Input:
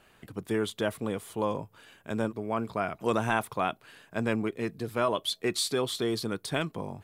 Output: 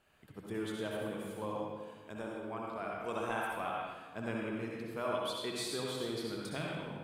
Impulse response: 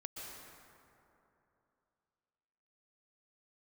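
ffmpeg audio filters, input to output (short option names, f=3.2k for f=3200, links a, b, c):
-filter_complex "[0:a]asettb=1/sr,asplit=3[a][b][c];[a]atrim=end=1.564[d];[b]atrim=start=1.56:end=3.67,asetpts=PTS-STARTPTS,afade=t=in:d=0.004:c=qsin,afade=t=out:st=2.106:d=0.004:c=qsin,equalizer=f=130:t=o:w=1.9:g=-6[e];[c]atrim=start=3.666[f];[d][e]acrossfade=d=0.004:c1=hsin:c2=qsin[g];[g][f]acrossfade=d=0.004:c1=qsin:c2=hsin[h];[1:a]atrim=start_sample=2205,asetrate=88200,aresample=44100[i];[h][i]afir=irnorm=-1:irlink=0"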